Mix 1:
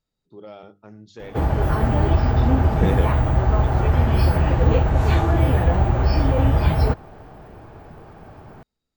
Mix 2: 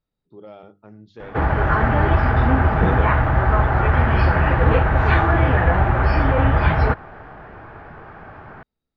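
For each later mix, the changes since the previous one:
background: add peaking EQ 1.6 kHz +13.5 dB 1.6 oct; master: add distance through air 210 m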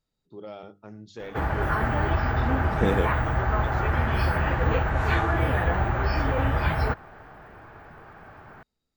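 background -8.0 dB; master: remove distance through air 210 m

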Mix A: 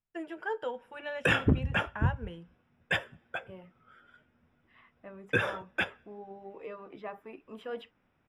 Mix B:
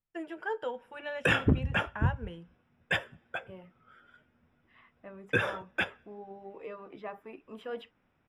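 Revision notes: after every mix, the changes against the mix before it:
no change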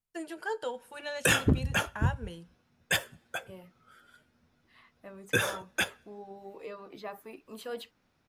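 master: remove Savitzky-Golay filter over 25 samples

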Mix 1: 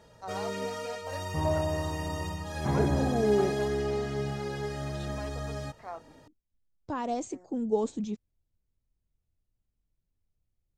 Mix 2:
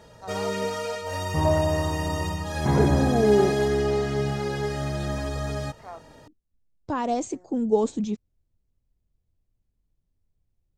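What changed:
second voice +6.0 dB; background +6.5 dB

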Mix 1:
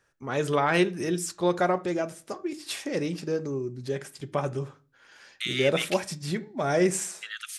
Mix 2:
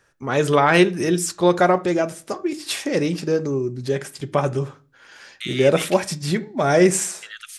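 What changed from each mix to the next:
first voice +8.0 dB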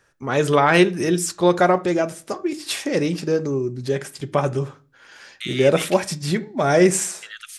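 no change

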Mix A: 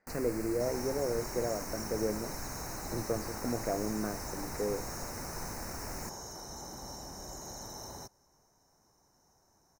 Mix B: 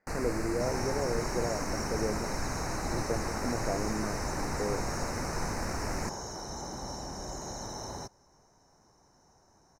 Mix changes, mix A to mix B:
first sound +8.5 dB; second sound +6.5 dB; master: add distance through air 61 m

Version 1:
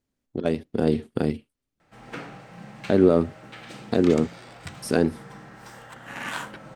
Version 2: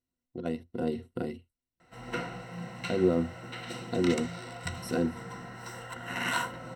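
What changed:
speech -11.0 dB; master: add rippled EQ curve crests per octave 2, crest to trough 13 dB

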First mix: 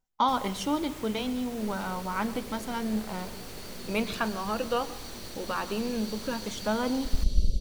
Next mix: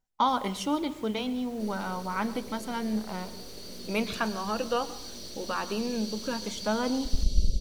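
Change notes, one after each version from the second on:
first sound -8.5 dB; second sound: add peaking EQ 5.4 kHz +6 dB 0.65 oct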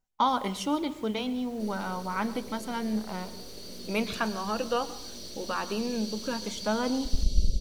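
first sound: send -8.0 dB

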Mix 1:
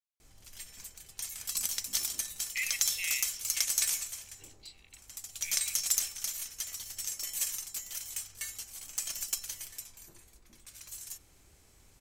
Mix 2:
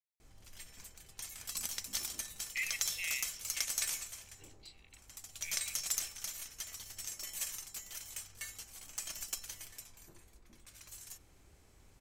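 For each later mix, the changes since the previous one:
master: add treble shelf 3.1 kHz -7.5 dB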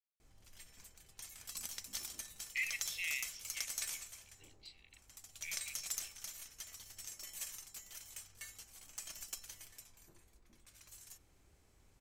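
background -5.5 dB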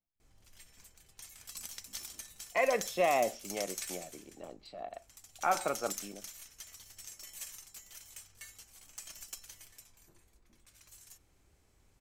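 speech: remove steep high-pass 2 kHz 96 dB/octave

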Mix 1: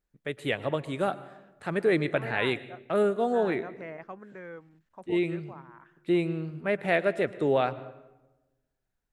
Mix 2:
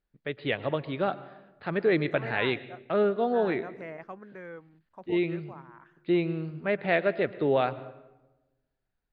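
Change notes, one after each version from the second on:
first voice: add brick-wall FIR low-pass 5 kHz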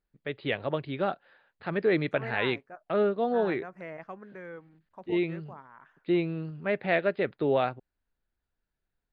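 reverb: off

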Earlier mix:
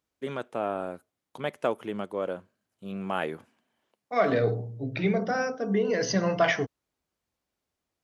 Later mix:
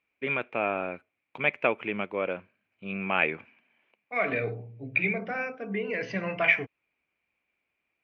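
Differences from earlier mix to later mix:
second voice -7.0 dB; master: add resonant low-pass 2.4 kHz, resonance Q 11

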